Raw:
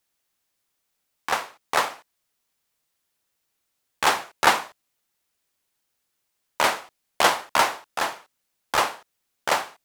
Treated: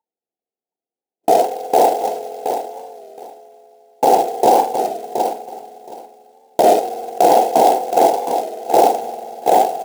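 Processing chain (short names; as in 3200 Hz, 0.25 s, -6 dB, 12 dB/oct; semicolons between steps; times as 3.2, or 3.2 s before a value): CVSD 64 kbps; steep low-pass 770 Hz 72 dB/oct; spectral noise reduction 28 dB; in parallel at +1 dB: negative-ratio compressor -31 dBFS, ratio -0.5; on the sum: reverb RT60 3.7 s, pre-delay 3 ms, DRR 15.5 dB; short-mantissa float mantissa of 2-bit; HPF 400 Hz 12 dB/oct; notch comb 600 Hz; feedback echo 0.722 s, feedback 17%, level -12 dB; maximiser +21.5 dB; record warp 33 1/3 rpm, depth 100 cents; gain -1 dB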